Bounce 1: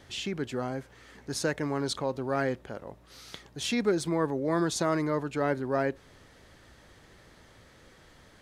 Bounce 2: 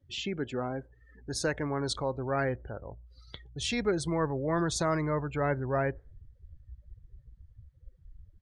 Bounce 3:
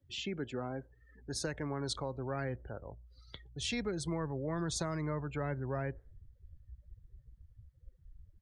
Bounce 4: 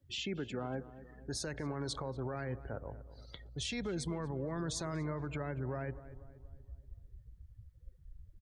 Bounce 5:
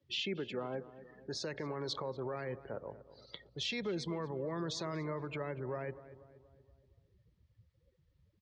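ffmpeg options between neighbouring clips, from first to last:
ffmpeg -i in.wav -af "afftdn=noise_reduction=33:noise_floor=-44,asubboost=boost=9.5:cutoff=81" out.wav
ffmpeg -i in.wav -filter_complex "[0:a]acrossover=split=240|3000[link_01][link_02][link_03];[link_02]acompressor=threshold=-32dB:ratio=6[link_04];[link_01][link_04][link_03]amix=inputs=3:normalize=0,volume=-4dB" out.wav
ffmpeg -i in.wav -filter_complex "[0:a]alimiter=level_in=7.5dB:limit=-24dB:level=0:latency=1:release=62,volume=-7.5dB,asplit=2[link_01][link_02];[link_02]adelay=238,lowpass=frequency=1400:poles=1,volume=-14dB,asplit=2[link_03][link_04];[link_04]adelay=238,lowpass=frequency=1400:poles=1,volume=0.53,asplit=2[link_05][link_06];[link_06]adelay=238,lowpass=frequency=1400:poles=1,volume=0.53,asplit=2[link_07][link_08];[link_08]adelay=238,lowpass=frequency=1400:poles=1,volume=0.53,asplit=2[link_09][link_10];[link_10]adelay=238,lowpass=frequency=1400:poles=1,volume=0.53[link_11];[link_01][link_03][link_05][link_07][link_09][link_11]amix=inputs=6:normalize=0,volume=2dB" out.wav
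ffmpeg -i in.wav -af "highpass=210,equalizer=frequency=270:width_type=q:width=4:gain=-7,equalizer=frequency=740:width_type=q:width=4:gain=-6,equalizer=frequency=1500:width_type=q:width=4:gain=-7,lowpass=frequency=5200:width=0.5412,lowpass=frequency=5200:width=1.3066,volume=3.5dB" out.wav

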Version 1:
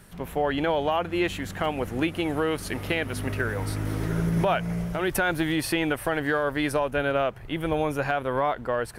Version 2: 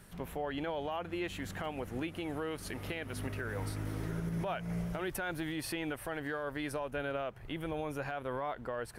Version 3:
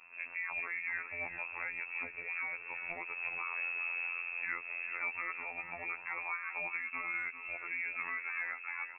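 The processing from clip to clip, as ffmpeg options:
ffmpeg -i in.wav -af "alimiter=limit=-23dB:level=0:latency=1:release=267,volume=-5dB" out.wav
ffmpeg -i in.wav -af "lowpass=frequency=2300:width_type=q:width=0.5098,lowpass=frequency=2300:width_type=q:width=0.6013,lowpass=frequency=2300:width_type=q:width=0.9,lowpass=frequency=2300:width_type=q:width=2.563,afreqshift=-2700,afftfilt=real='hypot(re,im)*cos(PI*b)':imag='0':win_size=2048:overlap=0.75,aecho=1:1:397:0.282,volume=2dB" out.wav

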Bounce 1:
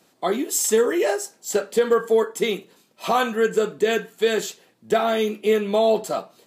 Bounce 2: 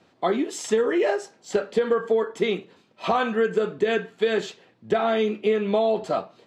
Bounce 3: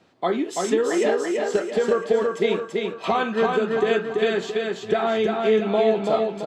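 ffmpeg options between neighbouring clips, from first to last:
ffmpeg -i in.wav -af "lowpass=3500,equalizer=frequency=89:width_type=o:width=0.47:gain=13.5,acompressor=threshold=-19dB:ratio=6,volume=1.5dB" out.wav
ffmpeg -i in.wav -af "aecho=1:1:335|670|1005|1340|1675|2010:0.708|0.326|0.15|0.0689|0.0317|0.0146" out.wav

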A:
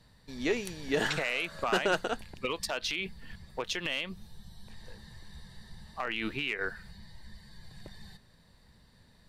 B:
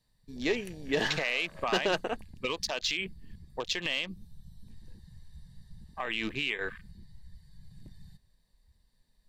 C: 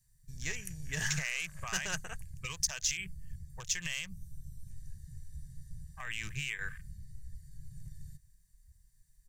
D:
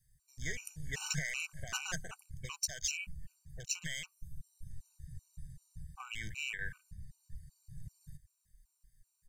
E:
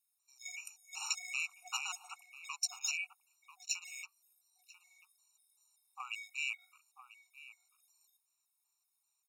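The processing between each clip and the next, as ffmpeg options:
ffmpeg -i in.wav -af "afwtdn=0.00794,highshelf=frequency=5400:gain=11.5,bandreject=frequency=1400:width=6.5" out.wav
ffmpeg -i in.wav -af "firequalizer=gain_entry='entry(150,0);entry(240,-28);entry(1600,-7);entry(4000,-16);entry(6200,6);entry(11000,4)':delay=0.05:min_phase=1,volume=4.5dB" out.wav
ffmpeg -i in.wav -af "afftfilt=real='re*gt(sin(2*PI*2.6*pts/sr)*(1-2*mod(floor(b*sr/1024/760),2)),0)':imag='im*gt(sin(2*PI*2.6*pts/sr)*(1-2*mod(floor(b*sr/1024/760),2)),0)':win_size=1024:overlap=0.75" out.wav
ffmpeg -i in.wav -filter_complex "[0:a]equalizer=frequency=11000:width_type=o:width=0.55:gain=-4.5,asplit=2[link_01][link_02];[link_02]adelay=991.3,volume=-10dB,highshelf=frequency=4000:gain=-22.3[link_03];[link_01][link_03]amix=inputs=2:normalize=0,afftfilt=real='re*eq(mod(floor(b*sr/1024/730),2),1)':imag='im*eq(mod(floor(b*sr/1024/730),2),1)':win_size=1024:overlap=0.75,volume=3dB" out.wav

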